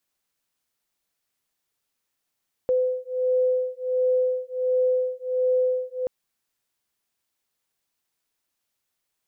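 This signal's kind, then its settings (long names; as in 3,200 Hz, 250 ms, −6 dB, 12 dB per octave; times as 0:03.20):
two tones that beat 507 Hz, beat 1.4 Hz, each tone −23.5 dBFS 3.38 s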